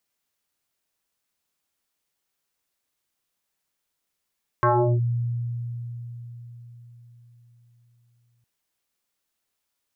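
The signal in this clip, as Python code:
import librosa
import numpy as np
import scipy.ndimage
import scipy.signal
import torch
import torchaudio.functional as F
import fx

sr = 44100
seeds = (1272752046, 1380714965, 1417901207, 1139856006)

y = fx.fm2(sr, length_s=3.81, level_db=-15.0, carrier_hz=119.0, ratio=2.03, index=5.5, index_s=0.37, decay_s=4.64, shape='linear')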